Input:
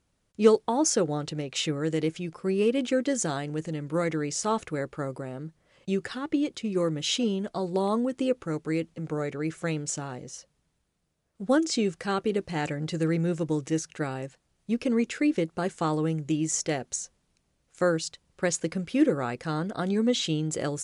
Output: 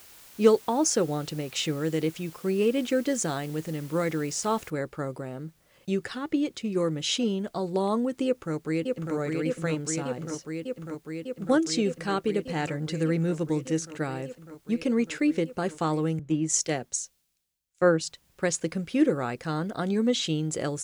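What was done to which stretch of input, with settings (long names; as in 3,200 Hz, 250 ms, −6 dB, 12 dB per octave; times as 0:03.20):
0:04.70: noise floor change −51 dB −69 dB
0:08.25–0:09.14: delay throw 600 ms, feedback 85%, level −3.5 dB
0:16.19–0:18.01: multiband upward and downward expander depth 70%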